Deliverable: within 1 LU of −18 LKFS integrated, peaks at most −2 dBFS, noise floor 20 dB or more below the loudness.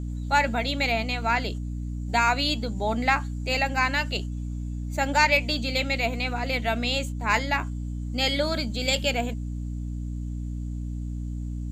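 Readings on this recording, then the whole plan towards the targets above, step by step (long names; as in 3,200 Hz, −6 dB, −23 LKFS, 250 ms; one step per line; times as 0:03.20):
mains hum 60 Hz; hum harmonics up to 300 Hz; level of the hum −29 dBFS; integrated loudness −26.0 LKFS; sample peak −7.0 dBFS; target loudness −18.0 LKFS
→ hum removal 60 Hz, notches 5
level +8 dB
brickwall limiter −2 dBFS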